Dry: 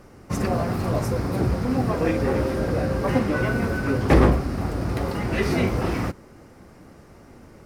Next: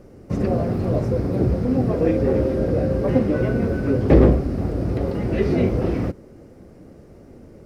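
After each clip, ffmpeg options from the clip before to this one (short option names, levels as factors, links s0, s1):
-filter_complex "[0:a]acrossover=split=5000[s0][s1];[s1]acompressor=threshold=0.00251:ratio=4:attack=1:release=60[s2];[s0][s2]amix=inputs=2:normalize=0,lowshelf=f=710:t=q:w=1.5:g=8,volume=0.531"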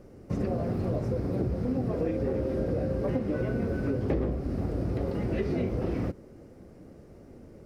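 -af "acompressor=threshold=0.1:ratio=6,volume=0.562"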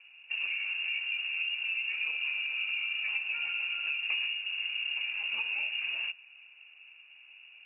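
-af "lowpass=f=2500:t=q:w=0.5098,lowpass=f=2500:t=q:w=0.6013,lowpass=f=2500:t=q:w=0.9,lowpass=f=2500:t=q:w=2.563,afreqshift=-2900,volume=0.596" -ar 12000 -c:a libmp3lame -b:a 24k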